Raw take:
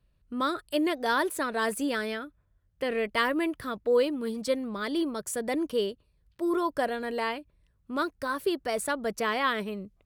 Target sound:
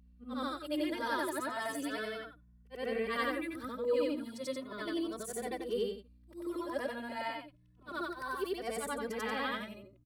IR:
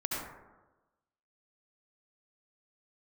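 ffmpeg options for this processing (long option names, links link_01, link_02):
-filter_complex "[0:a]afftfilt=real='re':imag='-im':win_size=8192:overlap=0.75,aeval=exprs='val(0)+0.00126*(sin(2*PI*60*n/s)+sin(2*PI*2*60*n/s)/2+sin(2*PI*3*60*n/s)/3+sin(2*PI*4*60*n/s)/4+sin(2*PI*5*60*n/s)/5)':channel_layout=same,asplit=2[link_01][link_02];[link_02]adelay=2.2,afreqshift=0.35[link_03];[link_01][link_03]amix=inputs=2:normalize=1"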